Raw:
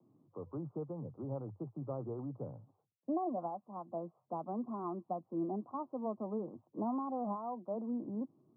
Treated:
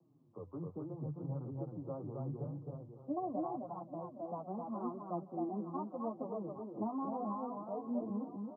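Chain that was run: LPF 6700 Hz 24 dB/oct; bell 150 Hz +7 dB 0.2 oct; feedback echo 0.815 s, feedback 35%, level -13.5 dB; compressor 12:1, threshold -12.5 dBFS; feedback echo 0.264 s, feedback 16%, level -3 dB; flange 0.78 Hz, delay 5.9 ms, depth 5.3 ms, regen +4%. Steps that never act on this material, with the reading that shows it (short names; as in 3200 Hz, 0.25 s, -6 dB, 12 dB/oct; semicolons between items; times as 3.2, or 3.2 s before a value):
LPF 6700 Hz: input band ends at 1300 Hz; compressor, threshold -12.5 dBFS: input peak -26.0 dBFS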